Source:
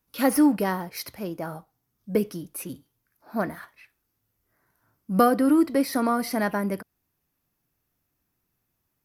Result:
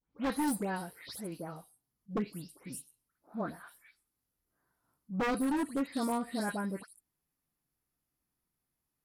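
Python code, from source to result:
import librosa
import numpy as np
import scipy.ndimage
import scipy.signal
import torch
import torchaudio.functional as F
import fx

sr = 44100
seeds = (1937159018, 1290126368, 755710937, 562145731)

y = fx.spec_delay(x, sr, highs='late', ms=180)
y = 10.0 ** (-16.5 / 20.0) * (np.abs((y / 10.0 ** (-16.5 / 20.0) + 3.0) % 4.0 - 2.0) - 1.0)
y = fx.formant_shift(y, sr, semitones=-2)
y = y * librosa.db_to_amplitude(-8.5)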